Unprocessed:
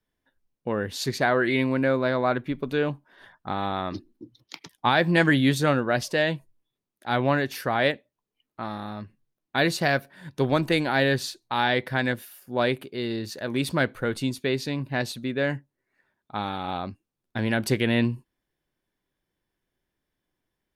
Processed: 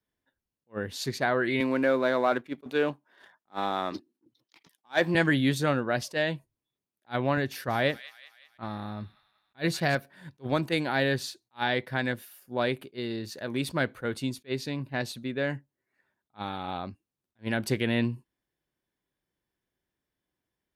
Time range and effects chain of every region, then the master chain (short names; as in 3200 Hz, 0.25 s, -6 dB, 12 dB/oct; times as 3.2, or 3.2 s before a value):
1.6–5.15 HPF 240 Hz + sample leveller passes 1
7.37–9.95 low shelf 110 Hz +11 dB + thin delay 0.187 s, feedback 52%, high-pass 2100 Hz, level -12 dB
whole clip: HPF 41 Hz; attack slew limiter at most 440 dB/s; gain -4 dB